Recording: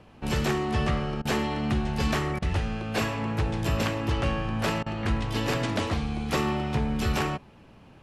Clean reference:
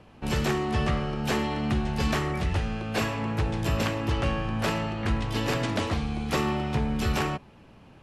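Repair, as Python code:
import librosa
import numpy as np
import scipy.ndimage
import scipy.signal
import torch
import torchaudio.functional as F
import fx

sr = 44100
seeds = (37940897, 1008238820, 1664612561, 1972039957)

y = fx.fix_interpolate(x, sr, at_s=(1.22, 2.39, 4.83), length_ms=31.0)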